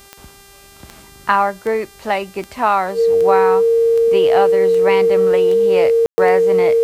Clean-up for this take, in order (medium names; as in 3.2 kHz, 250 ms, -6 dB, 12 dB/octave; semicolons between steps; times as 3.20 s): de-click; de-hum 396.8 Hz, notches 37; band-stop 460 Hz, Q 30; room tone fill 6.06–6.18 s